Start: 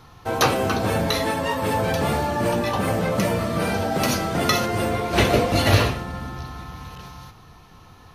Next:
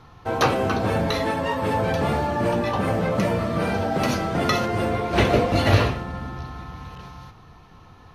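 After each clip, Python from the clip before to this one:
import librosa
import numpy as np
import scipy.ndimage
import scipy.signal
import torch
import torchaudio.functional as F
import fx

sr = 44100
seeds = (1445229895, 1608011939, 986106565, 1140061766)

y = fx.lowpass(x, sr, hz=2900.0, slope=6)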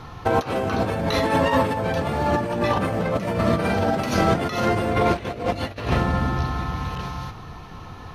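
y = fx.over_compress(x, sr, threshold_db=-26.0, ratio=-0.5)
y = F.gain(torch.from_numpy(y), 5.0).numpy()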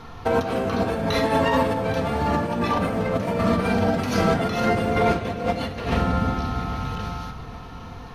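y = fx.echo_feedback(x, sr, ms=810, feedback_pct=47, wet_db=-18.0)
y = fx.room_shoebox(y, sr, seeds[0], volume_m3=3100.0, walls='furnished', distance_m=1.7)
y = F.gain(torch.from_numpy(y), -2.0).numpy()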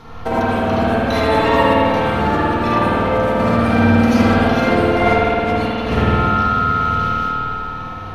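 y = x + 10.0 ** (-9.0 / 20.0) * np.pad(x, (int(81 * sr / 1000.0), 0))[:len(x)]
y = fx.rev_spring(y, sr, rt60_s=2.5, pass_ms=(52,), chirp_ms=40, drr_db=-6.5)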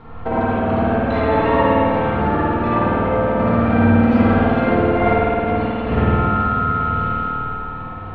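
y = fx.air_absorb(x, sr, metres=470.0)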